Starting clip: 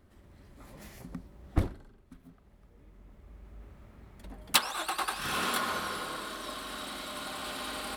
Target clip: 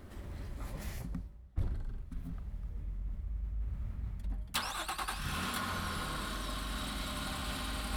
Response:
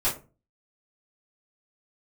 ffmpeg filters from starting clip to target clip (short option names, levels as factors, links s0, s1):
-af "asubboost=boost=8.5:cutoff=140,areverse,acompressor=threshold=0.00398:ratio=4,areverse,volume=3.35"